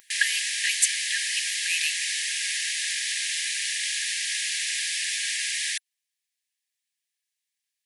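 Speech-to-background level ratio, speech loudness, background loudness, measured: −1.5 dB, −27.5 LKFS, −26.0 LKFS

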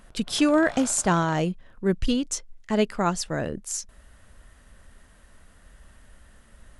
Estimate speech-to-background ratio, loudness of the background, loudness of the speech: 18.5 dB, −43.5 LKFS, −25.0 LKFS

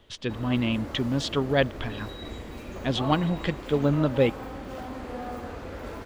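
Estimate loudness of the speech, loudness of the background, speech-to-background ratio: −26.5 LKFS, −38.0 LKFS, 11.5 dB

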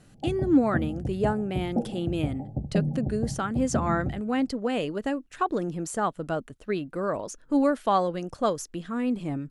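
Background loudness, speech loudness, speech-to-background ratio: −32.5 LKFS, −28.5 LKFS, 4.0 dB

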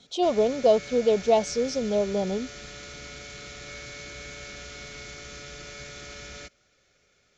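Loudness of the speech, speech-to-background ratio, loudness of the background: −24.5 LKFS, 15.5 dB, −40.0 LKFS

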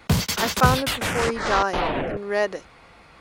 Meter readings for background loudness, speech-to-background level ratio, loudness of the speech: −24.5 LKFS, −0.5 dB, −25.0 LKFS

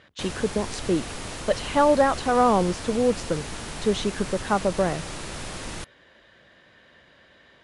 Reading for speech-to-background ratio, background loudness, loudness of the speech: 10.5 dB, −35.0 LKFS, −24.5 LKFS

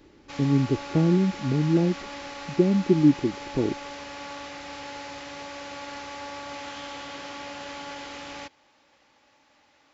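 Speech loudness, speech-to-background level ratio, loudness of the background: −23.5 LKFS, 14.0 dB, −37.5 LKFS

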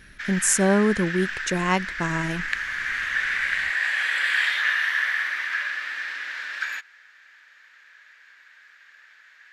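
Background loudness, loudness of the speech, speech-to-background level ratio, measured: −25.5 LKFS, −23.5 LKFS, 2.0 dB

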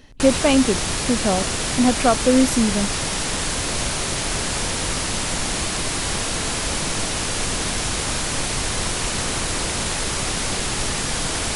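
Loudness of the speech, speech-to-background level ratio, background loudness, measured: −20.5 LKFS, 2.0 dB, −22.5 LKFS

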